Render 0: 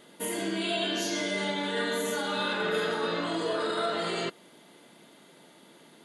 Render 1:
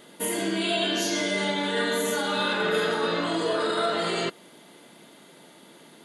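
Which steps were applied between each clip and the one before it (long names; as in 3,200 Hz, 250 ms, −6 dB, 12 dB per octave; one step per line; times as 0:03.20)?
high-shelf EQ 11,000 Hz +3.5 dB
level +4 dB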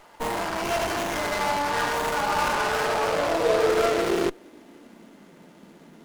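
harmonic generator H 8 −14 dB, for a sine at −14.5 dBFS
high-pass filter sweep 880 Hz → 180 Hz, 0:02.52–0:05.37
windowed peak hold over 9 samples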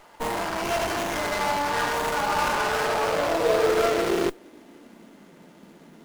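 noise that follows the level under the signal 27 dB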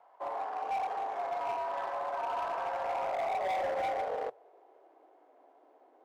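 resonant band-pass 630 Hz, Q 2.9
frequency shifter +100 Hz
gain into a clipping stage and back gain 27 dB
level −2.5 dB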